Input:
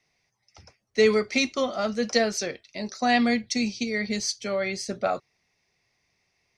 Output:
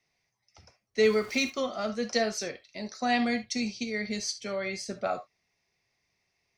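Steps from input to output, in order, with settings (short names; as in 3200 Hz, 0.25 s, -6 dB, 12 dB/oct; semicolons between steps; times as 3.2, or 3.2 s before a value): 1.03–1.5 zero-crossing step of -37.5 dBFS; on a send: Chebyshev high-pass 690 Hz, order 2 + reverb, pre-delay 3 ms, DRR 9 dB; on the sum: gain -5 dB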